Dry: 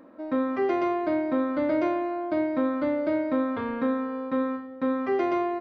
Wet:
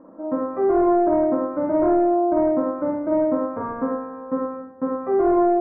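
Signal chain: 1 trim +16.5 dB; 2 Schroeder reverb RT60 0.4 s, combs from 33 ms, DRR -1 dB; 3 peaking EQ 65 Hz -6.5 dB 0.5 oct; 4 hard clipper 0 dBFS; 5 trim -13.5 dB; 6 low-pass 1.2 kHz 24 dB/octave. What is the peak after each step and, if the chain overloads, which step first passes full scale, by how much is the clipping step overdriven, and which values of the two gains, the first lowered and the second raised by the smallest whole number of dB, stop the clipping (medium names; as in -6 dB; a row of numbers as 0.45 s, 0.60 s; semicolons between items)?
+2.0 dBFS, +7.0 dBFS, +7.0 dBFS, 0.0 dBFS, -13.5 dBFS, -12.0 dBFS; step 1, 7.0 dB; step 1 +9.5 dB, step 5 -6.5 dB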